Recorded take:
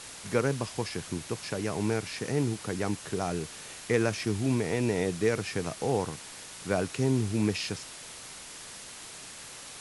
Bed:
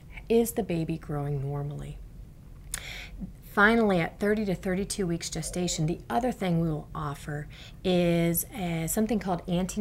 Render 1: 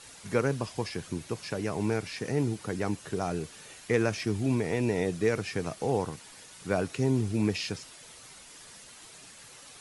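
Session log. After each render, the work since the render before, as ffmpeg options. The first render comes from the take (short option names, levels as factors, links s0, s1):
-af "afftdn=nr=8:nf=-45"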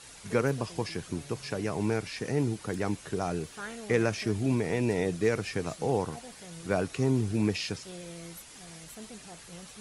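-filter_complex "[1:a]volume=0.1[s0];[0:a][s0]amix=inputs=2:normalize=0"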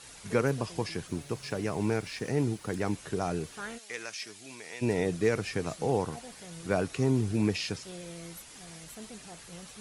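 -filter_complex "[0:a]asettb=1/sr,asplit=3[s0][s1][s2];[s0]atrim=end=1.074[s3];[s1]atrim=start=1.07:end=2.94,asetpts=PTS-STARTPTS,afade=t=in:d=0.004:c=qsin,afade=t=out:st=1.866:d=0.004:c=qsin,aeval=exprs='sgn(val(0))*max(abs(val(0))-0.00112,0)':c=same[s4];[s2]atrim=start=2.936[s5];[s3][s4]acrossfade=d=0.004:c1=hsin:c2=qsin[s6];[s6][s5]acrossfade=d=0.004:c1=qsin:c2=hsin,asplit=3[s7][s8][s9];[s7]afade=t=out:st=3.77:d=0.02[s10];[s8]bandpass=f=6200:t=q:w=0.53,afade=t=in:st=3.77:d=0.02,afade=t=out:st=4.81:d=0.02[s11];[s9]afade=t=in:st=4.81:d=0.02[s12];[s10][s11][s12]amix=inputs=3:normalize=0"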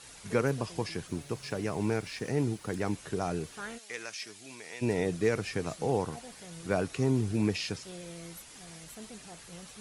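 -af "volume=0.891"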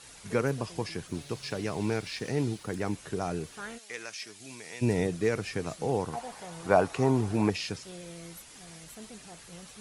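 -filter_complex "[0:a]asettb=1/sr,asplit=3[s0][s1][s2];[s0]atrim=end=1.144[s3];[s1]atrim=start=1.14:end=2.63,asetpts=PTS-STARTPTS,afade=t=in:d=0.004:c=qsin,afade=t=out:st=1.486:d=0.004:c=qsin,equalizer=f=3900:w=1.2:g=5.5[s4];[s2]atrim=start=2.626[s5];[s3][s4]acrossfade=d=0.004:c1=hsin:c2=qsin[s6];[s6][s5]acrossfade=d=0.004:c1=qsin:c2=hsin,asettb=1/sr,asplit=3[s7][s8][s9];[s7]atrim=end=4.404[s10];[s8]atrim=start=4.4:end=5.07,asetpts=PTS-STARTPTS,afade=t=in:d=0.004:c=qsin,afade=t=out:st=0.666:d=0.004:c=qsin,bass=f=250:g=6,treble=f=4000:g=3[s11];[s9]atrim=start=5.066[s12];[s10][s11]acrossfade=d=0.004:c1=hsin:c2=qsin[s13];[s13][s12]acrossfade=d=0.004:c1=qsin:c2=hsin,asettb=1/sr,asplit=3[s14][s15][s16];[s14]atrim=end=6.134[s17];[s15]atrim=start=6.13:end=7.5,asetpts=PTS-STARTPTS,afade=t=in:d=0.004:c=qsin,afade=t=out:st=1.366:d=0.004:c=qsin,equalizer=f=860:t=o:w=1.4:g=13[s18];[s16]atrim=start=7.496[s19];[s17][s18]acrossfade=d=0.004:c1=hsin:c2=qsin[s20];[s20][s19]acrossfade=d=0.004:c1=qsin:c2=hsin"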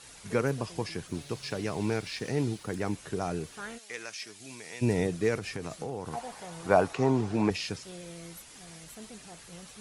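-filter_complex "[0:a]asettb=1/sr,asplit=3[s0][s1][s2];[s0]atrim=end=5.364[s3];[s1]atrim=start=5.36:end=6.11,asetpts=PTS-STARTPTS,afade=t=in:d=0.004:c=qsin,afade=t=out:st=0.746:d=0.004:c=qsin,acompressor=threshold=0.0282:ratio=5:attack=3.2:release=140:knee=1:detection=peak[s4];[s2]atrim=start=6.106[s5];[s3][s4]acrossfade=d=0.004:c1=hsin:c2=qsin[s6];[s6][s5]acrossfade=d=0.004:c1=qsin:c2=hsin,asettb=1/sr,asplit=3[s7][s8][s9];[s7]atrim=end=6.934[s10];[s8]atrim=start=6.93:end=7.51,asetpts=PTS-STARTPTS,afade=t=in:d=0.004:c=qsin,afade=t=out:st=0.576:d=0.004:c=qsin,highpass=110,lowpass=7100[s11];[s9]atrim=start=7.506[s12];[s10][s11]acrossfade=d=0.004:c1=hsin:c2=qsin[s13];[s13][s12]acrossfade=d=0.004:c1=qsin:c2=hsin"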